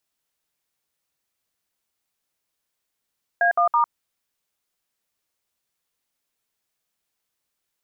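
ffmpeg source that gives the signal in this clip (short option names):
-f lavfi -i "aevalsrc='0.126*clip(min(mod(t,0.164),0.103-mod(t,0.164))/0.002,0,1)*(eq(floor(t/0.164),0)*(sin(2*PI*697*mod(t,0.164))+sin(2*PI*1633*mod(t,0.164)))+eq(floor(t/0.164),1)*(sin(2*PI*697*mod(t,0.164))+sin(2*PI*1209*mod(t,0.164)))+eq(floor(t/0.164),2)*(sin(2*PI*941*mod(t,0.164))+sin(2*PI*1209*mod(t,0.164))))':d=0.492:s=44100"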